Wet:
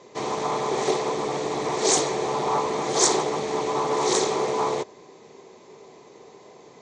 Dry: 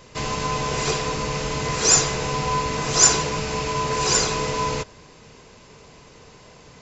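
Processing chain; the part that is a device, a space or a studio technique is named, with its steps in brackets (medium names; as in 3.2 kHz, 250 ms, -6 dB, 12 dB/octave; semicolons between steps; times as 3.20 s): full-range speaker at full volume (loudspeaker Doppler distortion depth 0.7 ms; cabinet simulation 230–7000 Hz, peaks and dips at 380 Hz +10 dB, 770 Hz +5 dB, 1.5 kHz -10 dB, 2.8 kHz -10 dB, 5 kHz -8 dB); trim -1 dB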